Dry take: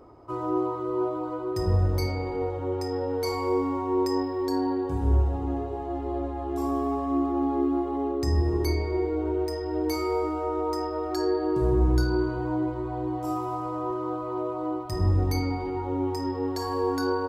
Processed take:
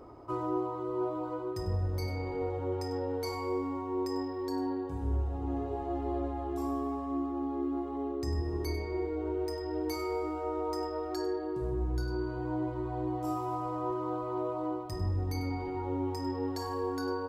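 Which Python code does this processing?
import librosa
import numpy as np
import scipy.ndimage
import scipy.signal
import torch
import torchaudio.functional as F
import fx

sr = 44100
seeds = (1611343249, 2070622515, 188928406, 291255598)

p1 = x + fx.echo_single(x, sr, ms=98, db=-14.0, dry=0)
p2 = fx.rider(p1, sr, range_db=10, speed_s=0.5)
y = p2 * 10.0 ** (-7.0 / 20.0)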